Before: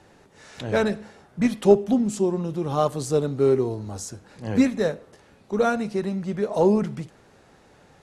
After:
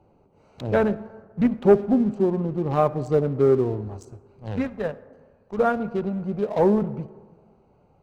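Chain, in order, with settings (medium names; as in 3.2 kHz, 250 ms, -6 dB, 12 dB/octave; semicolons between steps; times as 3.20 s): local Wiener filter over 25 samples; low-pass that closes with the level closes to 1.6 kHz, closed at -18.5 dBFS; peaking EQ 290 Hz -2.5 dB 1.9 oct, from 3.88 s -12.5 dB, from 5.58 s -4.5 dB; waveshaping leveller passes 1; reverberation RT60 1.6 s, pre-delay 53 ms, DRR 18 dB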